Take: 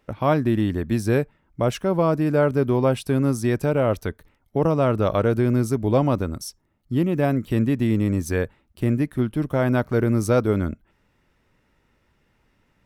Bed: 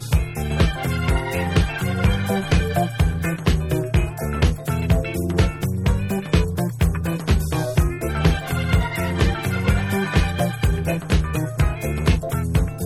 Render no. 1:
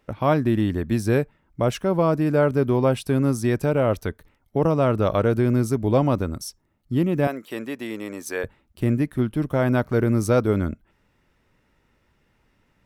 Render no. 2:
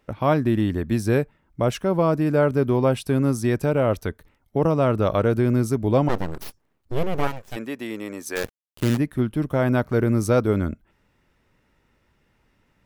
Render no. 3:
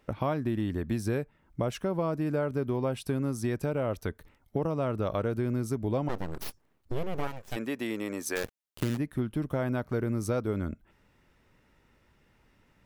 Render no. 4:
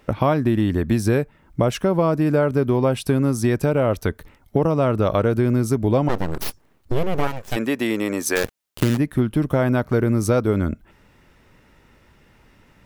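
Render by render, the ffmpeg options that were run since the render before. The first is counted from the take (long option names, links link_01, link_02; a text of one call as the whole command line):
ffmpeg -i in.wav -filter_complex "[0:a]asettb=1/sr,asplit=3[link_01][link_02][link_03];[link_01]atrim=end=7.274[link_04];[link_02]atrim=start=7.27:end=8.44,asetpts=PTS-STARTPTS,afade=type=in:duration=0.004:curve=qsin,afade=type=out:start_time=1.166:duration=0.004:curve=qsin,highpass=480[link_05];[link_03]atrim=start=8.436[link_06];[link_04][link_05]acrossfade=duration=0.004:curve1=hsin:curve2=qsin[link_07];[link_07][link_06]acrossfade=duration=0.004:curve1=qsin:curve2=hsin" out.wav
ffmpeg -i in.wav -filter_complex "[0:a]asplit=3[link_01][link_02][link_03];[link_01]afade=type=out:start_time=6.08:duration=0.02[link_04];[link_02]aeval=exprs='abs(val(0))':channel_layout=same,afade=type=in:start_time=6.08:duration=0.02,afade=type=out:start_time=7.55:duration=0.02[link_05];[link_03]afade=type=in:start_time=7.55:duration=0.02[link_06];[link_04][link_05][link_06]amix=inputs=3:normalize=0,asplit=3[link_07][link_08][link_09];[link_07]afade=type=out:start_time=8.35:duration=0.02[link_10];[link_08]acrusher=bits=5:dc=4:mix=0:aa=0.000001,afade=type=in:start_time=8.35:duration=0.02,afade=type=out:start_time=8.96:duration=0.02[link_11];[link_09]afade=type=in:start_time=8.96:duration=0.02[link_12];[link_10][link_11][link_12]amix=inputs=3:normalize=0" out.wav
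ffmpeg -i in.wav -af "acompressor=threshold=-29dB:ratio=3" out.wav
ffmpeg -i in.wav -af "volume=11dB" out.wav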